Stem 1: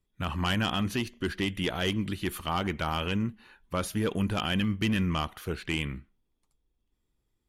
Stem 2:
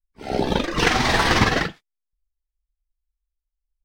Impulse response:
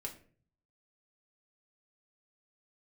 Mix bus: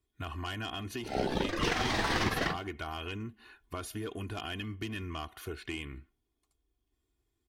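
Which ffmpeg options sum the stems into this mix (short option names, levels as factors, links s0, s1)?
-filter_complex "[0:a]aecho=1:1:2.8:0.74,acompressor=threshold=0.0141:ratio=2.5,highpass=45,volume=0.794,asplit=2[s0][s1];[1:a]acompressor=threshold=0.0891:ratio=6,adelay=850,volume=1.41[s2];[s1]apad=whole_len=206936[s3];[s2][s3]sidechaincompress=threshold=0.00708:ratio=10:attack=50:release=1410[s4];[s0][s4]amix=inputs=2:normalize=0"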